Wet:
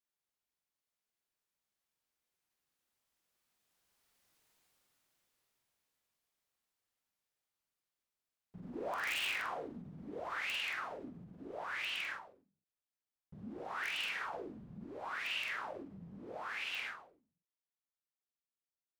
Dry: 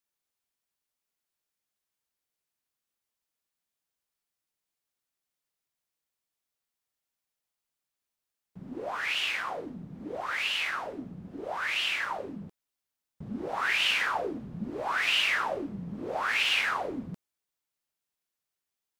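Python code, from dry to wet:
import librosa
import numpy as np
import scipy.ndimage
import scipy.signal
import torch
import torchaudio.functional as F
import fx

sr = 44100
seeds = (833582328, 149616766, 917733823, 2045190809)

p1 = fx.doppler_pass(x, sr, speed_mps=10, closest_m=5.0, pass_at_s=4.43)
p2 = fx.high_shelf(p1, sr, hz=4600.0, db=-4.0)
p3 = (np.mod(10.0 ** (43.0 / 20.0) * p2 + 1.0, 2.0) - 1.0) / 10.0 ** (43.0 / 20.0)
p4 = p2 + (p3 * 10.0 ** (-3.5 / 20.0))
p5 = fx.doubler(p4, sr, ms=46.0, db=-5.0)
p6 = fx.end_taper(p5, sr, db_per_s=110.0)
y = p6 * 10.0 ** (9.0 / 20.0)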